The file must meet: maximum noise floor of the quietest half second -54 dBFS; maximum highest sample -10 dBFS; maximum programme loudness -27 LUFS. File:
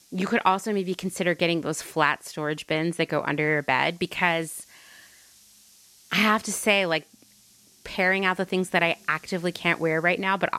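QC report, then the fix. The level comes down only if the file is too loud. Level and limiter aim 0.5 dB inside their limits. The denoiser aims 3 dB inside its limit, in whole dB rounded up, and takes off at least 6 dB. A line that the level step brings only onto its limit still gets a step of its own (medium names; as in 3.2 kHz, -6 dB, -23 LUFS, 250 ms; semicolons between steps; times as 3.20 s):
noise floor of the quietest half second -57 dBFS: pass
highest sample -6.0 dBFS: fail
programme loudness -24.5 LUFS: fail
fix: trim -3 dB; peak limiter -10.5 dBFS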